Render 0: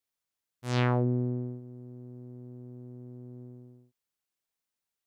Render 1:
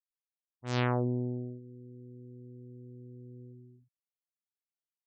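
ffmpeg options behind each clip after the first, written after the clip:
ffmpeg -i in.wav -af "asubboost=boost=11.5:cutoff=53,afftfilt=real='re*gte(hypot(re,im),0.00501)':imag='im*gte(hypot(re,im),0.00501)':win_size=1024:overlap=0.75,volume=-1.5dB" out.wav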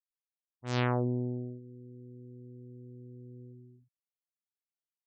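ffmpeg -i in.wav -af anull out.wav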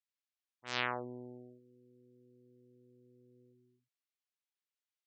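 ffmpeg -i in.wav -af "bandpass=frequency=2700:width_type=q:width=0.66:csg=0,volume=2.5dB" out.wav

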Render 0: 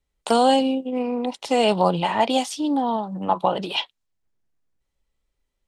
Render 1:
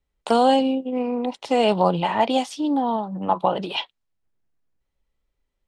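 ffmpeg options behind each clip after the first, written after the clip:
ffmpeg -i in.wav -af "aemphasis=mode=reproduction:type=cd" out.wav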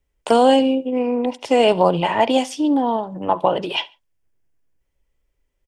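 ffmpeg -i in.wav -af "equalizer=frequency=200:width_type=o:width=0.33:gain=-9,equalizer=frequency=800:width_type=o:width=0.33:gain=-5,equalizer=frequency=1250:width_type=o:width=0.33:gain=-6,equalizer=frequency=4000:width_type=o:width=0.33:gain=-9,aecho=1:1:70|140:0.0841|0.0236,volume=5.5dB" out.wav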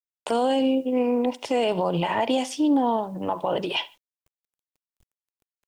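ffmpeg -i in.wav -af "alimiter=limit=-12dB:level=0:latency=1:release=79,acrusher=bits=9:mix=0:aa=0.000001,volume=-2dB" out.wav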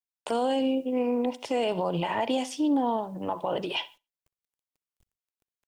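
ffmpeg -i in.wav -af "aecho=1:1:62|124:0.0668|0.0234,volume=-4dB" out.wav

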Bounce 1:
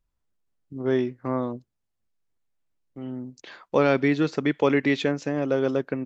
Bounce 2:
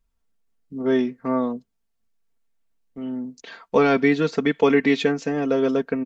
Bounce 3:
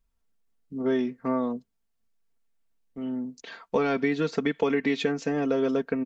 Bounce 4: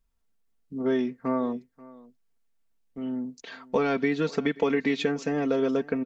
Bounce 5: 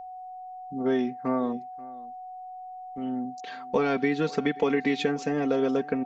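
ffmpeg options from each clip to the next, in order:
ffmpeg -i in.wav -af "aecho=1:1:4.4:0.73,volume=1.5dB" out.wav
ffmpeg -i in.wav -af "acompressor=threshold=-19dB:ratio=5,volume=-2dB" out.wav
ffmpeg -i in.wav -af "aecho=1:1:534:0.0841" out.wav
ffmpeg -i in.wav -af "aeval=exprs='val(0)+0.0126*sin(2*PI*740*n/s)':channel_layout=same" out.wav

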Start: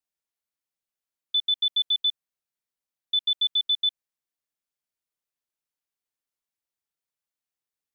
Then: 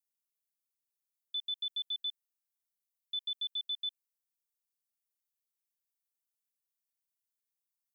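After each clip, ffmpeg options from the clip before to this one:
ffmpeg -i in.wav -af "aderivative,alimiter=level_in=5dB:limit=-24dB:level=0:latency=1,volume=-5dB,volume=-2dB" out.wav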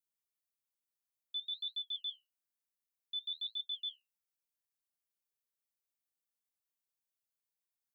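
ffmpeg -i in.wav -af "flanger=delay=7.6:depth=8.4:regen=-60:speed=1.1:shape=sinusoidal,volume=1dB" out.wav

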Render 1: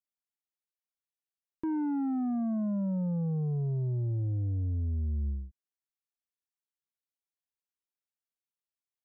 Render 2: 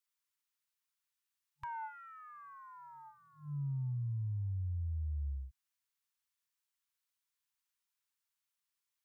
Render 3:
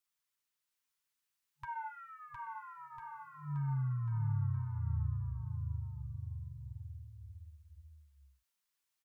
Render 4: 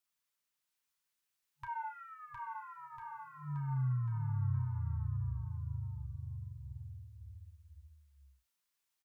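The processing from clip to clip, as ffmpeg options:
ffmpeg -i in.wav -af "afftfilt=real='re*(1-between(b*sr/4096,140,870))':imag='im*(1-between(b*sr/4096,140,870))':win_size=4096:overlap=0.75,lowshelf=frequency=470:gain=-8,acompressor=threshold=-46dB:ratio=2,volume=6.5dB" out.wav
ffmpeg -i in.wav -filter_complex "[0:a]flanger=delay=5.6:depth=3.4:regen=-23:speed=1.5:shape=triangular,asplit=2[link_01][link_02];[link_02]aecho=0:1:710|1349|1924|2442|2908:0.631|0.398|0.251|0.158|0.1[link_03];[link_01][link_03]amix=inputs=2:normalize=0,volume=4.5dB" out.wav
ffmpeg -i in.wav -filter_complex "[0:a]asplit=2[link_01][link_02];[link_02]adelay=32,volume=-10.5dB[link_03];[link_01][link_03]amix=inputs=2:normalize=0" out.wav

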